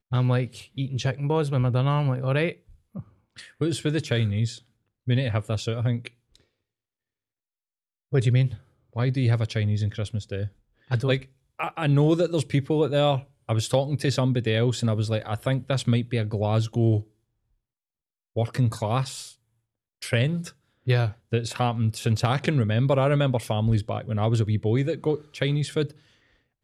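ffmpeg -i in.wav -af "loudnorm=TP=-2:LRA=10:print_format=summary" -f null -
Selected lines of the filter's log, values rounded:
Input Integrated:    -25.3 LUFS
Input True Peak:      -8.0 dBTP
Input LRA:             4.8 LU
Input Threshold:     -35.9 LUFS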